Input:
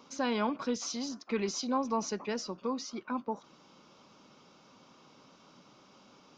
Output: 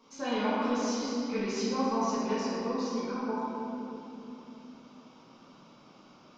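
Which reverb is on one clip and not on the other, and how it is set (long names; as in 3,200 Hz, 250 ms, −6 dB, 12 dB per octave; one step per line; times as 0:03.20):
rectangular room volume 170 cubic metres, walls hard, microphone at 1.6 metres
level −9 dB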